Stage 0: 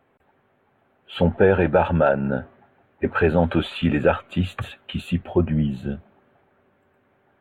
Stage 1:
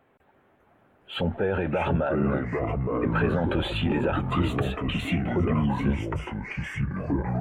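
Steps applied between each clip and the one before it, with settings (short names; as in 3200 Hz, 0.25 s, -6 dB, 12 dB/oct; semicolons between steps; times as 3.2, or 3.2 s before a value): limiter -17.5 dBFS, peak gain reduction 11 dB; echoes that change speed 0.346 s, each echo -4 st, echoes 3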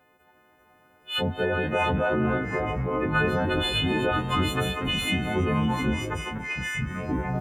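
frequency quantiser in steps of 3 st; frequency-shifting echo 0.24 s, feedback 34%, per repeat +93 Hz, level -16 dB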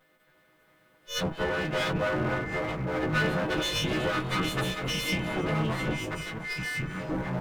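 minimum comb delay 6.2 ms; gain -1.5 dB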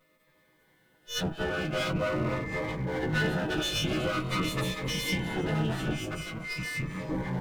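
cascading phaser falling 0.45 Hz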